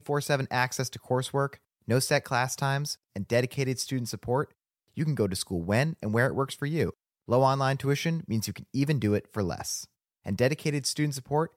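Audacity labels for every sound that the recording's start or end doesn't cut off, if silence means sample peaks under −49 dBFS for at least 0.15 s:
1.880000	2.950000	sound
3.160000	4.510000	sound
4.970000	6.920000	sound
7.280000	9.850000	sound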